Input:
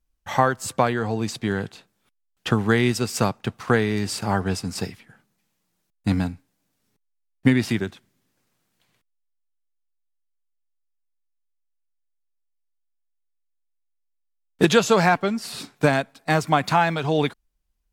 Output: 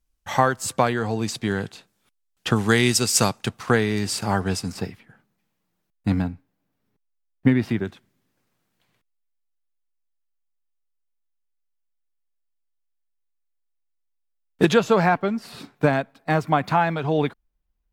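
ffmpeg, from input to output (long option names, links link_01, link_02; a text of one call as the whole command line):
ffmpeg -i in.wav -af "asetnsamples=nb_out_samples=441:pad=0,asendcmd='2.56 equalizer g 11.5;3.49 equalizer g 3;4.72 equalizer g -8.5;6.22 equalizer g -15;7.85 equalizer g -5;14.74 equalizer g -12',equalizer=frequency=8100:width_type=o:width=2.3:gain=3" out.wav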